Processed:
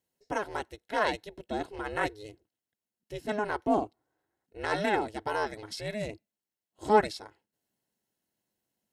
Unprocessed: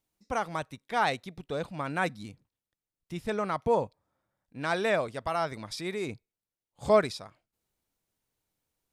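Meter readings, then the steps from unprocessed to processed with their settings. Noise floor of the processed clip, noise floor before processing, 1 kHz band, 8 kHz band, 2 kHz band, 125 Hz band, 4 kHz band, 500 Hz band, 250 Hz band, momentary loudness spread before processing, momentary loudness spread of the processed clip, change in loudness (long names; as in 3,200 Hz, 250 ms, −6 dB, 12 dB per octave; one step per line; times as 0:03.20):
below −85 dBFS, below −85 dBFS, +0.5 dB, −1.5 dB, 0.0 dB, −4.5 dB, −1.0 dB, −2.0 dB, +1.0 dB, 16 LU, 15 LU, −1.0 dB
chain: ring modulation 210 Hz
notch comb filter 1,200 Hz
level +3 dB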